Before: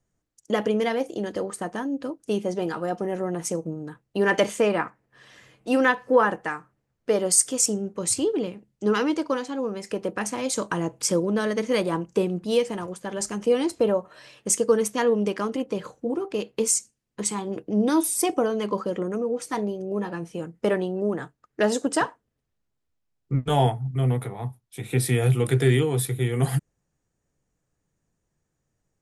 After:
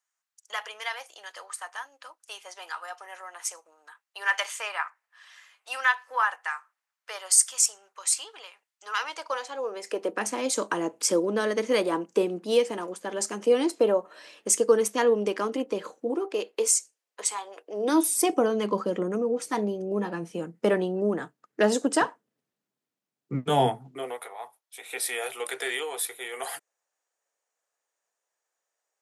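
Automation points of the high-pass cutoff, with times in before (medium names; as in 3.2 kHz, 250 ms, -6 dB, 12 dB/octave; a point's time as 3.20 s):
high-pass 24 dB/octave
8.91 s 960 Hz
10.22 s 250 Hz
15.97 s 250 Hz
17.57 s 680 Hz
18.12 s 170 Hz
23.73 s 170 Hz
24.18 s 580 Hz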